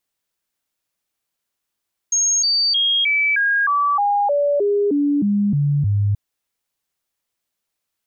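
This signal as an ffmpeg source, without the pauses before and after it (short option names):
-f lavfi -i "aevalsrc='0.188*clip(min(mod(t,0.31),0.31-mod(t,0.31))/0.005,0,1)*sin(2*PI*6520*pow(2,-floor(t/0.31)/2)*mod(t,0.31))':d=4.03:s=44100"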